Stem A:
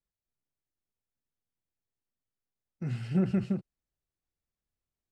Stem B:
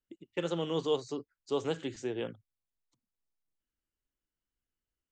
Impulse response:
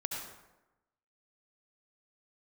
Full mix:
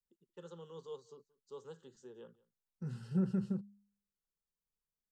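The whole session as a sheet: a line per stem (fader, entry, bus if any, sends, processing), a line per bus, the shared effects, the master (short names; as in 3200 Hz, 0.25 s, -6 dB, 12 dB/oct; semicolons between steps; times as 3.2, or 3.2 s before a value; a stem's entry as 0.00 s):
-5.0 dB, 0.00 s, no send, no echo send, notch 1200 Hz, Q 12; de-hum 101.1 Hz, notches 2
-16.0 dB, 0.00 s, no send, echo send -23.5 dB, vocal rider within 3 dB 2 s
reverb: off
echo: echo 0.178 s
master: fixed phaser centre 450 Hz, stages 8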